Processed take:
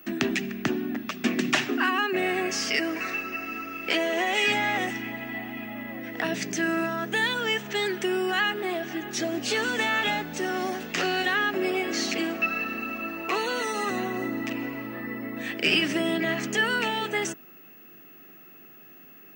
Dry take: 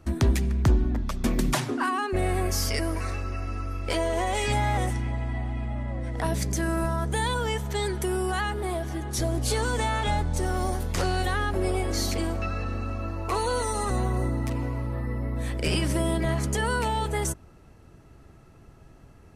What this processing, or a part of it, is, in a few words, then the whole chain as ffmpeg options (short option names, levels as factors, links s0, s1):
old television with a line whistle: -af "highpass=f=210:w=0.5412,highpass=f=210:w=1.3066,equalizer=f=530:t=q:w=4:g=-9,equalizer=f=960:t=q:w=4:g=-9,equalizer=f=1800:t=q:w=4:g=6,equalizer=f=2700:t=q:w=4:g=10,equalizer=f=4500:t=q:w=4:g=-3,lowpass=f=6600:w=0.5412,lowpass=f=6600:w=1.3066,aeval=exprs='val(0)+0.00282*sin(2*PI*15625*n/s)':c=same,volume=1.41"